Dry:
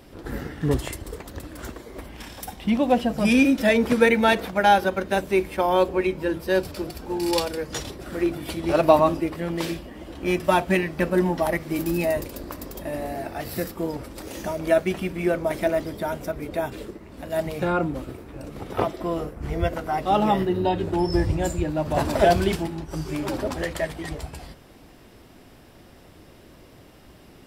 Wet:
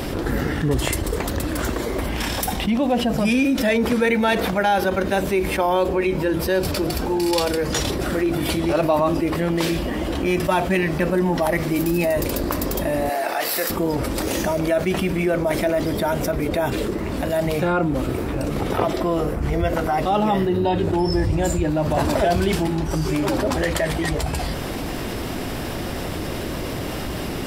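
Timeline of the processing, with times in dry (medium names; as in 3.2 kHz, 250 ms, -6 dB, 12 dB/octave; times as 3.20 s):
13.09–13.70 s: high-pass 610 Hz
whole clip: level flattener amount 70%; trim -5 dB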